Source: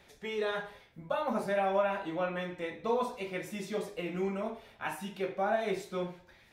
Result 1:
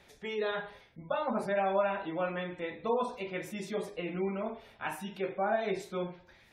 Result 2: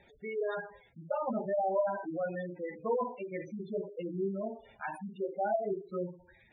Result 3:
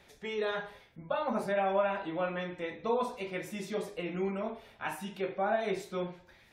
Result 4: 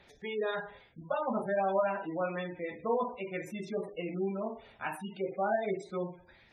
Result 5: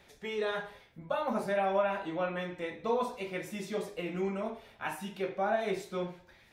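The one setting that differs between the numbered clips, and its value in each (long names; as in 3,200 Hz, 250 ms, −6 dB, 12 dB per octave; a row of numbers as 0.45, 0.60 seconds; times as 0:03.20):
gate on every frequency bin, under each frame's peak: −35, −10, −45, −20, −60 decibels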